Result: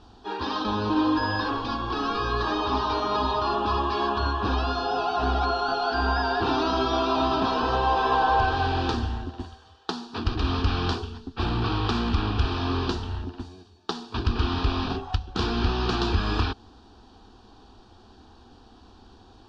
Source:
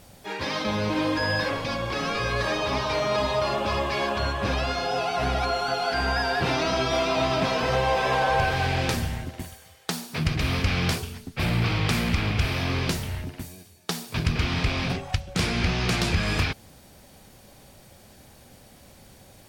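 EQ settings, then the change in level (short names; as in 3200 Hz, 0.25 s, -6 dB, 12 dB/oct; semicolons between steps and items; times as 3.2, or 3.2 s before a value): LPF 4200 Hz 24 dB/oct; fixed phaser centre 570 Hz, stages 6; +4.5 dB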